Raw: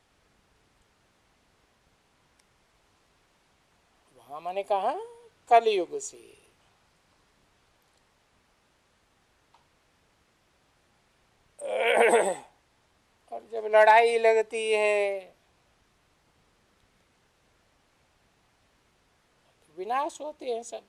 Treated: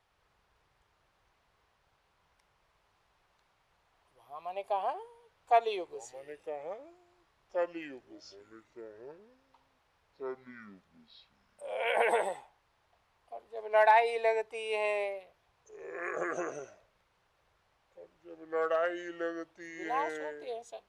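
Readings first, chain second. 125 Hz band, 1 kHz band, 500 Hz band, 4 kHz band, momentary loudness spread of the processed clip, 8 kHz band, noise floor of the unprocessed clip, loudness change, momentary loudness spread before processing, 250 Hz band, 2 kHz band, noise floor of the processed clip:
no reading, -4.5 dB, -6.5 dB, -7.5 dB, 22 LU, -11.5 dB, -68 dBFS, -7.5 dB, 19 LU, -3.0 dB, -5.5 dB, -73 dBFS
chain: ever faster or slower copies 191 ms, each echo -5 st, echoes 2, each echo -6 dB; graphic EQ 250/1000/8000 Hz -10/+4/-7 dB; trim -7 dB

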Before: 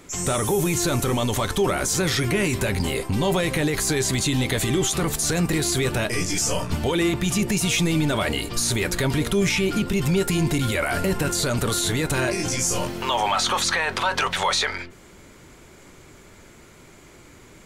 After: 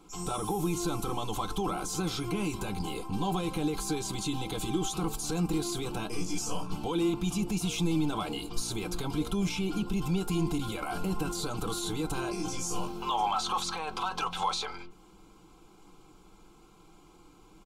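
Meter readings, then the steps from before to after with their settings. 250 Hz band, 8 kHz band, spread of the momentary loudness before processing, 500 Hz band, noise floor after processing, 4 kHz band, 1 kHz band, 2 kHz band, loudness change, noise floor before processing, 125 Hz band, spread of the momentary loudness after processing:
-7.0 dB, -13.0 dB, 3 LU, -11.5 dB, -57 dBFS, -11.0 dB, -6.0 dB, -16.5 dB, -10.0 dB, -48 dBFS, -10.5 dB, 5 LU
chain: tone controls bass +1 dB, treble -9 dB; comb 3.8 ms, depth 65%; hard clipper -12.5 dBFS, distortion -37 dB; static phaser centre 370 Hz, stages 8; trim -5.5 dB

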